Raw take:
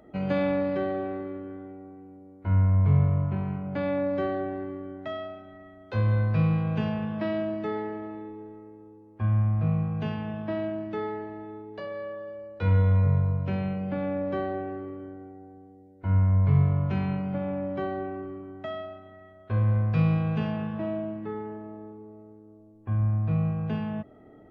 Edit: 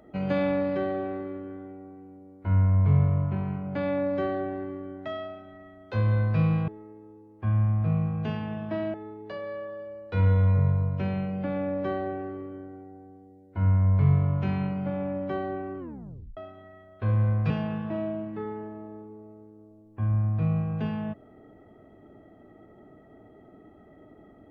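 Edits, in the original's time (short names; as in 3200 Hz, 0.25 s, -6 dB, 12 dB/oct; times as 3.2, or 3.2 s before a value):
6.68–8.45 cut
10.71–11.42 cut
18.27 tape stop 0.58 s
19.98–20.39 cut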